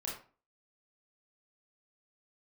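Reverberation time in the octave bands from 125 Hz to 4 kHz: 0.40, 0.45, 0.40, 0.40, 0.30, 0.25 s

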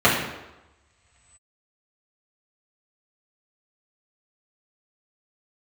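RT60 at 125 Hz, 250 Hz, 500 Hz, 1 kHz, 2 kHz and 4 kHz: 2.1, 0.90, 1.0, 1.1, 0.95, 0.85 s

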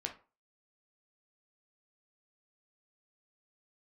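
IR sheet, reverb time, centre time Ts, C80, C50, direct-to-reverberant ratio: 0.35 s, 13 ms, 18.0 dB, 11.5 dB, 2.5 dB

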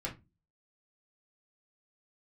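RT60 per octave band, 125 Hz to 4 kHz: 0.50, 0.40, 0.25, 0.20, 0.20, 0.15 s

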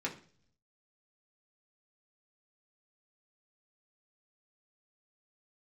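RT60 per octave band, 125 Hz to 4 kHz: 1.0, 0.70, 0.55, 0.40, 0.45, 0.55 s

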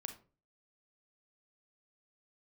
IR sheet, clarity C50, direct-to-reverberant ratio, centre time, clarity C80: 10.5 dB, 6.5 dB, 11 ms, 16.5 dB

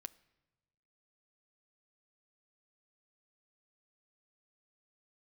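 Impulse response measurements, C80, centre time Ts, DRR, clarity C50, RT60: 23.0 dB, 2 ms, 15.5 dB, 21.0 dB, not exponential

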